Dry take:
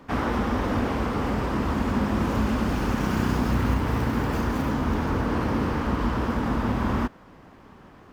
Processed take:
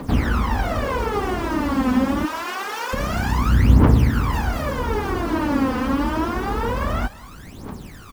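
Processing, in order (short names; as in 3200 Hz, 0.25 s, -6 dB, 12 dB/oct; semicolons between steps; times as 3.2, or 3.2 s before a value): 2.25–2.93 HPF 800 Hz 12 dB/oct; in parallel at 0 dB: compressor 8:1, threshold -35 dBFS, peak gain reduction 16 dB; on the sum: bit-crush 8-bit; phaser 0.26 Hz, delay 4 ms, feedback 79%; on a send: echo 0.196 s -21.5 dB; on the sum: gain -1.5 dB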